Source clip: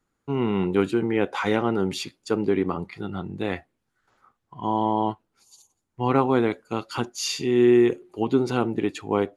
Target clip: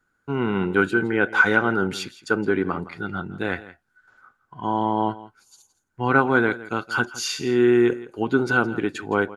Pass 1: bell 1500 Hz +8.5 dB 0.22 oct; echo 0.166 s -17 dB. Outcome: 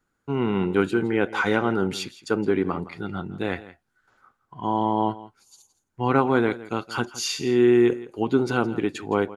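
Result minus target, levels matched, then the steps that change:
2000 Hz band -7.0 dB
change: bell 1500 Hz +20 dB 0.22 oct

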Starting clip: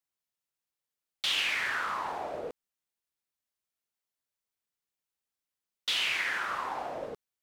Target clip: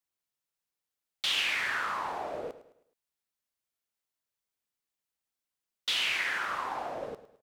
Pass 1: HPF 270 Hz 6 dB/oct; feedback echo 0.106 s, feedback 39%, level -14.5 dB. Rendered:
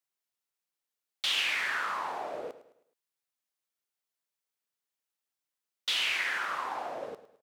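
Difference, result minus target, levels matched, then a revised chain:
250 Hz band -2.5 dB
feedback echo 0.106 s, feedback 39%, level -14.5 dB

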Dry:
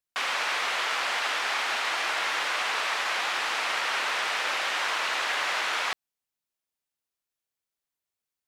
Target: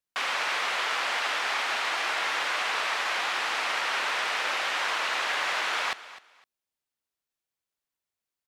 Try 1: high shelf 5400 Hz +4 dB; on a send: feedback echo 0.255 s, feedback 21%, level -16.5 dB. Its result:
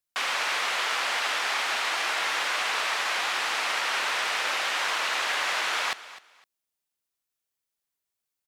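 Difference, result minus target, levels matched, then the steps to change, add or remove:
8000 Hz band +3.0 dB
change: high shelf 5400 Hz -3 dB

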